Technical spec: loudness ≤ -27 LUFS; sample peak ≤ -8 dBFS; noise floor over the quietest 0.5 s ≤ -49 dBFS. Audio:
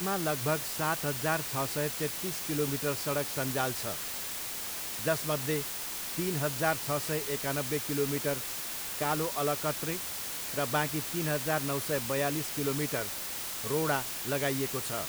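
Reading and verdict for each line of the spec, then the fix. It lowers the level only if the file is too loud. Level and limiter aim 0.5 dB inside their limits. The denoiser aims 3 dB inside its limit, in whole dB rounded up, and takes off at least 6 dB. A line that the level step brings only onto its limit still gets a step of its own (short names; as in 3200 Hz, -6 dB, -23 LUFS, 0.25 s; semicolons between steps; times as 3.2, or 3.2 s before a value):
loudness -31.0 LUFS: OK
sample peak -13.5 dBFS: OK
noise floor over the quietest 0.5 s -37 dBFS: fail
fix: denoiser 15 dB, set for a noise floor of -37 dBFS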